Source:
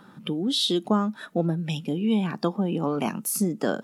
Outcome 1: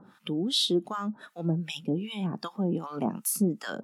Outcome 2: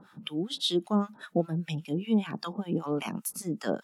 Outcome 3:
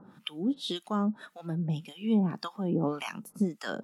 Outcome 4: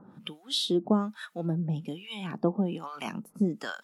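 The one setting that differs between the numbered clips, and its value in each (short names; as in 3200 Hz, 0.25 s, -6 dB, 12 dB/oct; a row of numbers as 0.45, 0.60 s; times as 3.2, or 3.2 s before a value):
harmonic tremolo, rate: 2.6, 5.1, 1.8, 1.2 Hz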